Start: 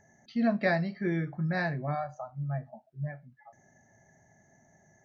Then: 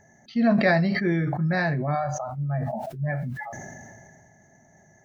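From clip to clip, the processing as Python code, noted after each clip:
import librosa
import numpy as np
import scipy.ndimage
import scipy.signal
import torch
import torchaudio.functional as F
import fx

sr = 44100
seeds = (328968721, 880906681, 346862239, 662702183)

y = fx.sustainer(x, sr, db_per_s=25.0)
y = y * 10.0 ** (5.5 / 20.0)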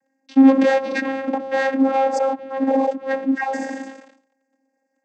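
y = fx.leveller(x, sr, passes=5)
y = fx.vocoder(y, sr, bands=16, carrier='saw', carrier_hz=268.0)
y = fx.cheby_harmonics(y, sr, harmonics=(5,), levels_db=(-32,), full_scale_db=1.5)
y = y * 10.0 ** (-5.0 / 20.0)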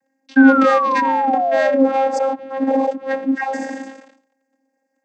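y = fx.spec_paint(x, sr, seeds[0], shape='fall', start_s=0.36, length_s=1.5, low_hz=520.0, high_hz=1600.0, level_db=-19.0)
y = y * 10.0 ** (1.0 / 20.0)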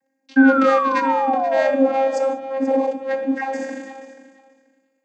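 y = fx.echo_feedback(x, sr, ms=483, feedback_pct=17, wet_db=-15)
y = fx.rev_gated(y, sr, seeds[1], gate_ms=220, shape='falling', drr_db=8.0)
y = y * 10.0 ** (-3.0 / 20.0)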